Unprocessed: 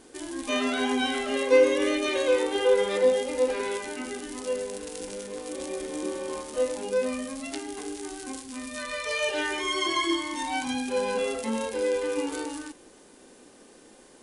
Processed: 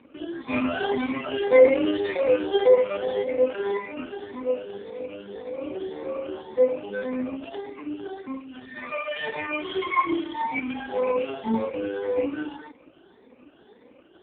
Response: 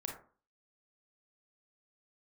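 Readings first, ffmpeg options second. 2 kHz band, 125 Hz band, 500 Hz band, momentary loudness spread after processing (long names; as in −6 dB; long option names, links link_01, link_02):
−1.0 dB, can't be measured, +2.5 dB, 17 LU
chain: -af "afftfilt=real='re*pow(10,16/40*sin(2*PI*(0.95*log(max(b,1)*sr/1024/100)/log(2)-(1.8)*(pts-256)/sr)))':imag='im*pow(10,16/40*sin(2*PI*(0.95*log(max(b,1)*sr/1024/100)/log(2)-(1.8)*(pts-256)/sr)))':win_size=1024:overlap=0.75" -ar 8000 -c:a libopencore_amrnb -b:a 4750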